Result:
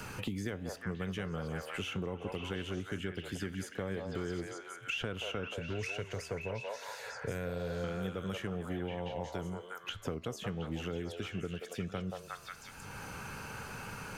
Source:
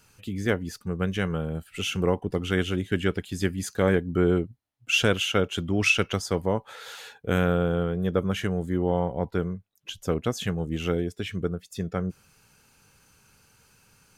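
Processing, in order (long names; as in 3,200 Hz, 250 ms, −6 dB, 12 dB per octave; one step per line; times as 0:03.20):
brickwall limiter −16.5 dBFS, peak gain reduction 7 dB
echo through a band-pass that steps 179 ms, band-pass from 750 Hz, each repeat 0.7 octaves, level 0 dB
flanger 1 Hz, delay 9.3 ms, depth 6.3 ms, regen +89%
0:05.54–0:07.84: thirty-one-band graphic EQ 125 Hz +5 dB, 200 Hz −10 dB, 315 Hz −10 dB, 800 Hz −7 dB, 1,250 Hz −11 dB, 3,150 Hz −12 dB
multiband upward and downward compressor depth 100%
level −6 dB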